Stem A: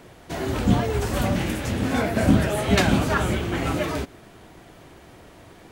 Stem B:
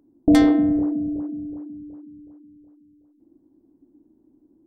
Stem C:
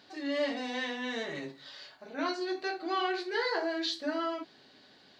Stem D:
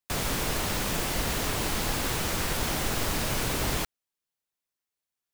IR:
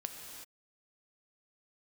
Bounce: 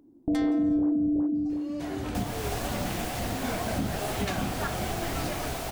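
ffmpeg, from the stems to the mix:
-filter_complex "[0:a]adelay=1500,volume=0.355[s0];[1:a]volume=1.19,asplit=3[s1][s2][s3];[s2]volume=0.133[s4];[s3]volume=0.0794[s5];[2:a]asplit=3[s6][s7][s8];[s6]bandpass=f=730:t=q:w=8,volume=1[s9];[s7]bandpass=f=1090:t=q:w=8,volume=0.501[s10];[s8]bandpass=f=2440:t=q:w=8,volume=0.355[s11];[s9][s10][s11]amix=inputs=3:normalize=0,aexciter=amount=12.3:drive=9.1:freq=5400,adelay=1350,volume=0.75[s12];[3:a]equalizer=f=720:t=o:w=0.3:g=13.5,adelay=2050,volume=0.447[s13];[4:a]atrim=start_sample=2205[s14];[s4][s14]afir=irnorm=-1:irlink=0[s15];[s5]aecho=0:1:169:1[s16];[s0][s1][s12][s13][s15][s16]amix=inputs=6:normalize=0,alimiter=limit=0.112:level=0:latency=1:release=231"

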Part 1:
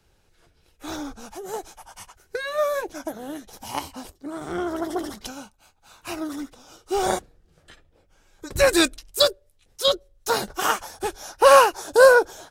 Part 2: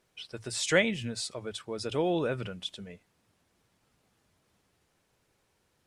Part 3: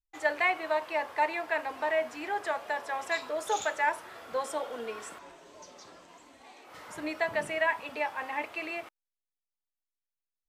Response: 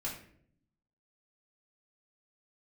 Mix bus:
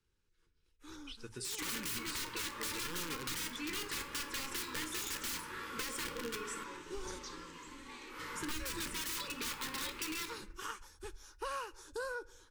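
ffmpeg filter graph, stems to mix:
-filter_complex "[0:a]asubboost=boost=6.5:cutoff=63,lowpass=11000,volume=0.126,asplit=2[s0][s1];[s1]volume=0.1[s2];[1:a]highshelf=f=7200:g=6,aeval=exprs='(mod(13.3*val(0)+1,2)-1)/13.3':c=same,adelay=900,volume=0.422,asplit=2[s3][s4];[s4]volume=0.168[s5];[2:a]aeval=exprs='(mod(33.5*val(0)+1,2)-1)/33.5':c=same,adelay=1450,volume=1.19,asplit=2[s6][s7];[s7]volume=0.631[s8];[3:a]atrim=start_sample=2205[s9];[s2][s5][s8]amix=inputs=3:normalize=0[s10];[s10][s9]afir=irnorm=-1:irlink=0[s11];[s0][s3][s6][s11]amix=inputs=4:normalize=0,asuperstop=centerf=680:order=4:qfactor=1.5,acompressor=threshold=0.0126:ratio=4"

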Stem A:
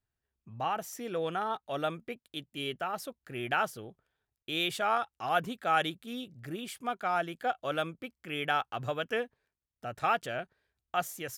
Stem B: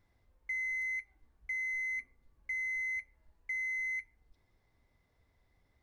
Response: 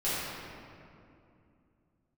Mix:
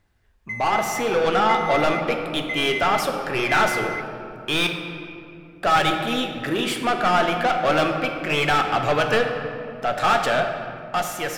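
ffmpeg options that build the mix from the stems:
-filter_complex "[0:a]asplit=2[s0][s1];[s1]highpass=f=720:p=1,volume=25.1,asoftclip=type=tanh:threshold=0.224[s2];[s0][s2]amix=inputs=2:normalize=0,lowpass=f=2800:p=1,volume=0.501,volume=0.708,asplit=3[s3][s4][s5];[s3]atrim=end=4.67,asetpts=PTS-STARTPTS,afade=t=out:st=4.666:d=0.004:c=hsin[s6];[s4]atrim=start=4.67:end=5.63,asetpts=PTS-STARTPTS,volume=0[s7];[s5]atrim=start=5.63,asetpts=PTS-STARTPTS,afade=t=in:d=0.004:c=hsin[s8];[s6][s7][s8]concat=n=3:v=0:a=1,asplit=2[s9][s10];[s10]volume=0.266[s11];[1:a]aphaser=in_gain=1:out_gain=1:delay=1:decay=0.45:speed=1:type=triangular,volume=1.12[s12];[2:a]atrim=start_sample=2205[s13];[s11][s13]afir=irnorm=-1:irlink=0[s14];[s9][s12][s14]amix=inputs=3:normalize=0,dynaudnorm=f=260:g=7:m=1.41"

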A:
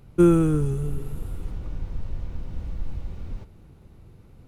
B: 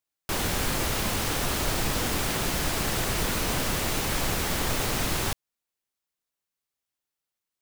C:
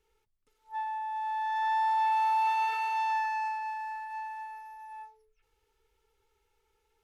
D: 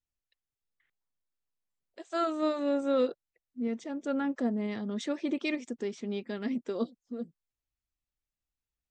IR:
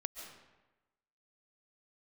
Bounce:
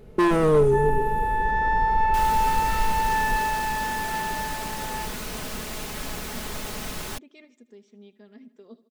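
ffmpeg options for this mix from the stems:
-filter_complex "[0:a]equalizer=f=460:t=o:w=0.88:g=14.5,asoftclip=type=hard:threshold=0.168,volume=1[s0];[1:a]adelay=1850,volume=0.447[s1];[2:a]equalizer=f=1700:t=o:w=1.7:g=12.5,acompressor=threshold=0.02:ratio=1.5,volume=1.19[s2];[3:a]adelay=1900,volume=0.133,asplit=2[s3][s4];[s4]volume=0.133,aecho=0:1:78|156|234|312|390|468|546|624|702:1|0.57|0.325|0.185|0.106|0.0602|0.0343|0.0195|0.0111[s5];[s0][s1][s2][s3][s5]amix=inputs=5:normalize=0,aecho=1:1:4.7:0.48"

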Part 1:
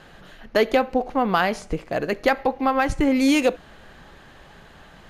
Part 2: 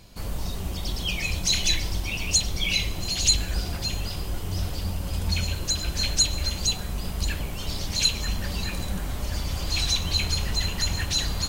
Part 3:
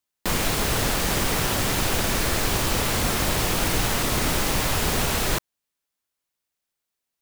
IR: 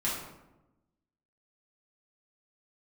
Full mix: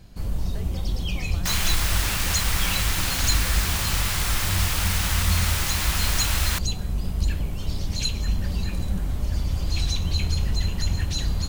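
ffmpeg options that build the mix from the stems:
-filter_complex "[0:a]acompressor=threshold=0.0631:ratio=6,volume=0.119[s0];[1:a]lowshelf=f=360:g=11,volume=0.501[s1];[2:a]highpass=1100,adelay=1200,volume=0.944[s2];[s0][s1][s2]amix=inputs=3:normalize=0"

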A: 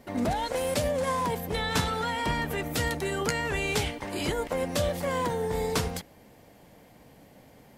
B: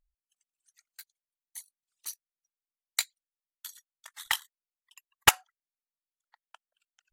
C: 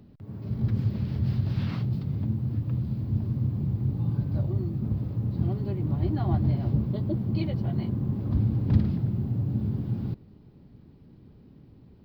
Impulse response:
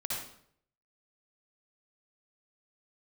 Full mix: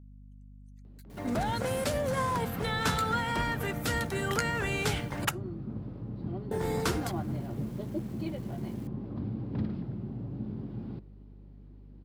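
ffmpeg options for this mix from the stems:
-filter_complex "[0:a]acrusher=bits=8:mix=0:aa=0.000001,adelay=1100,volume=0.668,asplit=3[s0][s1][s2];[s0]atrim=end=5.25,asetpts=PTS-STARTPTS,afade=t=out:st=5.246:d=0.004:c=hsin[s3];[s1]atrim=start=5.25:end=6.51,asetpts=PTS-STARTPTS,volume=0[s4];[s2]atrim=start=6.51,asetpts=PTS-STARTPTS,afade=t=in:d=0.004:c=hsin[s5];[s3][s4][s5]concat=n=3:v=0:a=1[s6];[1:a]volume=0.211[s7];[2:a]highpass=320,aemphasis=mode=reproduction:type=bsi,adelay=850,volume=0.631[s8];[s6][s7][s8]amix=inputs=3:normalize=0,adynamicequalizer=threshold=0.00224:dfrequency=1400:dqfactor=3:tfrequency=1400:tqfactor=3:attack=5:release=100:ratio=0.375:range=3.5:mode=boostabove:tftype=bell,aeval=exprs='val(0)+0.00355*(sin(2*PI*50*n/s)+sin(2*PI*2*50*n/s)/2+sin(2*PI*3*50*n/s)/3+sin(2*PI*4*50*n/s)/4+sin(2*PI*5*50*n/s)/5)':c=same"

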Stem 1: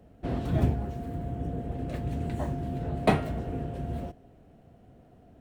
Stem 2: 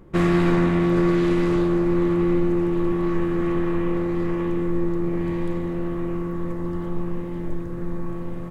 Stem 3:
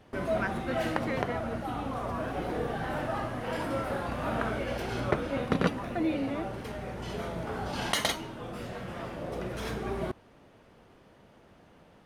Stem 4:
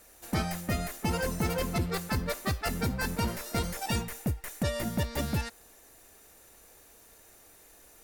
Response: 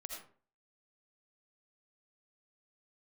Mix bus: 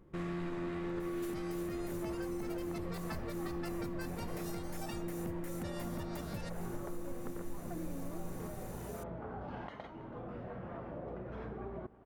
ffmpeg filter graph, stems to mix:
-filter_complex "[0:a]adelay=1300,volume=0.112[s0];[1:a]volume=0.188,asplit=3[s1][s2][s3];[s2]volume=0.501[s4];[s3]volume=0.668[s5];[2:a]lowpass=1300,acompressor=threshold=0.0141:ratio=6,adelay=1750,volume=0.708,asplit=2[s6][s7];[s7]volume=0.1[s8];[3:a]acompressor=threshold=0.0141:ratio=6,adelay=1000,volume=1.19[s9];[4:a]atrim=start_sample=2205[s10];[s4][s10]afir=irnorm=-1:irlink=0[s11];[s5][s8]amix=inputs=2:normalize=0,aecho=0:1:326:1[s12];[s0][s1][s6][s9][s11][s12]amix=inputs=6:normalize=0,alimiter=level_in=2.11:limit=0.0631:level=0:latency=1:release=449,volume=0.473"

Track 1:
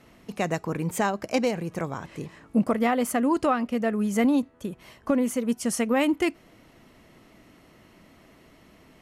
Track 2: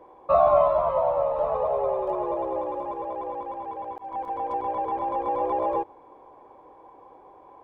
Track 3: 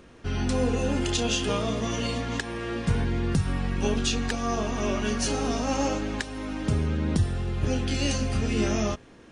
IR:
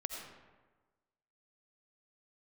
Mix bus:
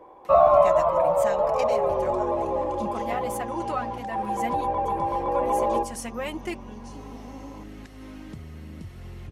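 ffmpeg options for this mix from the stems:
-filter_complex "[0:a]highpass=f=470:p=1,aecho=1:1:5.5:0.77,acompressor=mode=upward:threshold=0.0141:ratio=2.5,adelay=250,volume=0.398[s0];[1:a]bandreject=f=53.72:t=h:w=4,bandreject=f=107.44:t=h:w=4,bandreject=f=161.16:t=h:w=4,bandreject=f=214.88:t=h:w=4,bandreject=f=268.6:t=h:w=4,bandreject=f=322.32:t=h:w=4,bandreject=f=376.04:t=h:w=4,bandreject=f=429.76:t=h:w=4,bandreject=f=483.48:t=h:w=4,bandreject=f=537.2:t=h:w=4,bandreject=f=590.92:t=h:w=4,bandreject=f=644.64:t=h:w=4,bandreject=f=698.36:t=h:w=4,bandreject=f=752.08:t=h:w=4,bandreject=f=805.8:t=h:w=4,bandreject=f=859.52:t=h:w=4,bandreject=f=913.24:t=h:w=4,bandreject=f=966.96:t=h:w=4,bandreject=f=1020.68:t=h:w=4,bandreject=f=1074.4:t=h:w=4,bandreject=f=1128.12:t=h:w=4,bandreject=f=1181.84:t=h:w=4,bandreject=f=1235.56:t=h:w=4,bandreject=f=1289.28:t=h:w=4,bandreject=f=1343:t=h:w=4,bandreject=f=1396.72:t=h:w=4,bandreject=f=1450.44:t=h:w=4,bandreject=f=1504.16:t=h:w=4,bandreject=f=1557.88:t=h:w=4,bandreject=f=1611.6:t=h:w=4,bandreject=f=1665.32:t=h:w=4,volume=1.33[s1];[2:a]acrossover=split=340[s2][s3];[s3]acompressor=threshold=0.00891:ratio=6[s4];[s2][s4]amix=inputs=2:normalize=0,acompressor=threshold=0.0251:ratio=6,adelay=1650,volume=0.562[s5];[s0][s1][s5]amix=inputs=3:normalize=0"

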